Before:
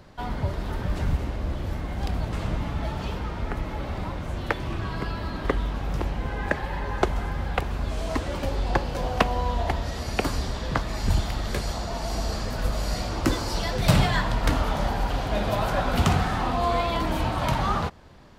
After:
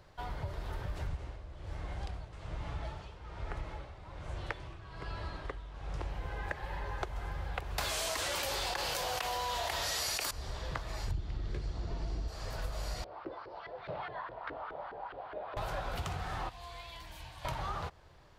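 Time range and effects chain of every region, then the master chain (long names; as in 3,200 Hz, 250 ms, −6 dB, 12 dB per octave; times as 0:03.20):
0:01.07–0:06.10: low-pass filter 9,900 Hz 24 dB per octave + amplitude tremolo 1.2 Hz, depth 73%
0:07.78–0:10.31: spectral tilt +4 dB per octave + envelope flattener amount 100%
0:11.11–0:12.28: low-pass filter 5,000 Hz + low shelf with overshoot 460 Hz +10 dB, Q 1.5
0:13.04–0:15.57: Butterworth low-pass 4,700 Hz + auto-filter band-pass saw up 4.8 Hz 360–1,600 Hz
0:16.49–0:17.45: guitar amp tone stack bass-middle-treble 5-5-5 + notch filter 1,300 Hz, Q 5.7
whole clip: downward compressor, threshold −25 dBFS; parametric band 230 Hz −14 dB 0.64 octaves; level −7.5 dB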